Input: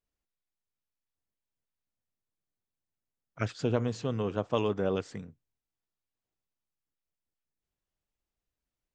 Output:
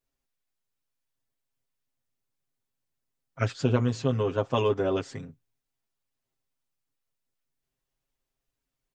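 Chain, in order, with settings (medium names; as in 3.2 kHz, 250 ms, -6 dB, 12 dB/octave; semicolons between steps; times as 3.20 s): comb 7.5 ms, depth 96%; trim +1.5 dB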